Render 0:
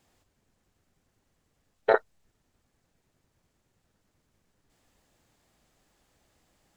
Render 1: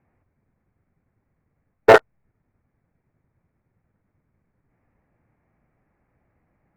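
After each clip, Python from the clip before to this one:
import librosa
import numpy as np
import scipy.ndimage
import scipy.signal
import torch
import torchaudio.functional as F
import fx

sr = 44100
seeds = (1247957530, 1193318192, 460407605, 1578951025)

y = scipy.signal.sosfilt(scipy.signal.ellip(4, 1.0, 40, 2300.0, 'lowpass', fs=sr, output='sos'), x)
y = fx.peak_eq(y, sr, hz=120.0, db=8.0, octaves=2.1)
y = fx.leveller(y, sr, passes=3)
y = y * librosa.db_to_amplitude(5.0)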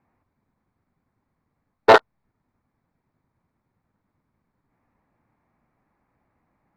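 y = fx.graphic_eq(x, sr, hz=(250, 1000, 4000), db=(6, 10, 12))
y = y * librosa.db_to_amplitude(-6.5)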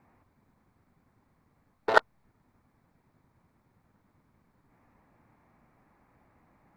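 y = fx.over_compress(x, sr, threshold_db=-17.0, ratio=-0.5)
y = y * librosa.db_to_amplitude(-2.0)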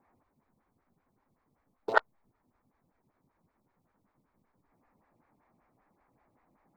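y = fx.stagger_phaser(x, sr, hz=5.2)
y = y * librosa.db_to_amplitude(-3.0)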